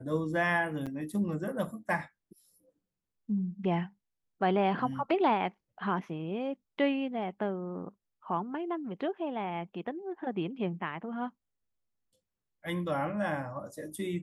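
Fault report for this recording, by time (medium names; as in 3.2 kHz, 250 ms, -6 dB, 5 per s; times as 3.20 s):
0.86–0.87 s: dropout 6.8 ms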